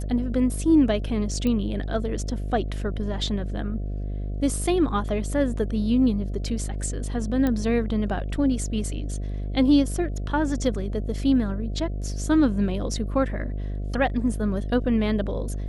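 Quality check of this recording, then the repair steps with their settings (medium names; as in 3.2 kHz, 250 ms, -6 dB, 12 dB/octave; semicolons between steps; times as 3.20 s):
buzz 50 Hz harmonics 14 -29 dBFS
1.47 s: pop -15 dBFS
7.47 s: pop -13 dBFS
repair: de-click; de-hum 50 Hz, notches 14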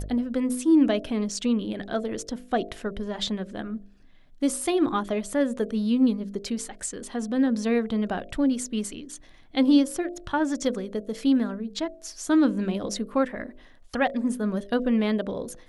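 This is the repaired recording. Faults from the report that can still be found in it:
nothing left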